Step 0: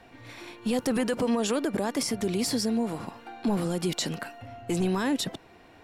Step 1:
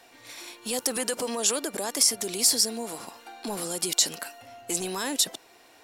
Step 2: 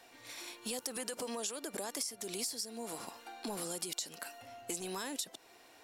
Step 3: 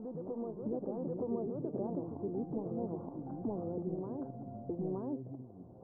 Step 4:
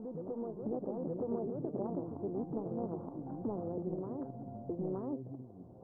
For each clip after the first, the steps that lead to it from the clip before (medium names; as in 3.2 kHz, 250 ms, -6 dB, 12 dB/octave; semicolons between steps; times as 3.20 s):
tone controls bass -15 dB, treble +15 dB; trim -1.5 dB
compression 10:1, threshold -31 dBFS, peak gain reduction 15 dB; trim -4.5 dB
Gaussian low-pass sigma 13 samples; ever faster or slower copies 183 ms, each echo -5 st, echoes 3, each echo -6 dB; reverse echo 920 ms -3 dB; trim +6.5 dB
loudspeaker Doppler distortion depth 0.23 ms